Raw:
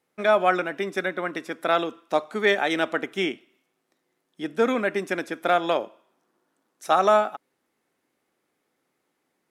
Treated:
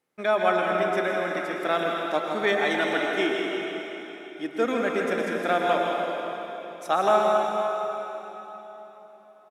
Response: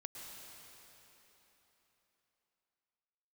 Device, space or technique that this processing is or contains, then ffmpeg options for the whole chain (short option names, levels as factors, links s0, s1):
cave: -filter_complex "[0:a]asettb=1/sr,asplit=3[s0][s1][s2];[s0]atrim=end=2.784[s3];[s1]atrim=start=2.78:end=4.65,asetpts=PTS-STARTPTS,afade=t=in:d=0.004:c=qsin,afade=t=out:st=1.866:d=0.004:c=qsin,aecho=1:1:2.8:0.48,atrim=end_sample=82467[s4];[s2]atrim=start=4.646[s5];[s3][s4]acrossfade=d=0.004:c1=hsin:c2=qsin[s6];[s6][s5]acrossfade=d=0.004:c1=qsin:c2=hsin,aecho=1:1:161:0.376[s7];[1:a]atrim=start_sample=2205[s8];[s7][s8]afir=irnorm=-1:irlink=0,volume=1.26"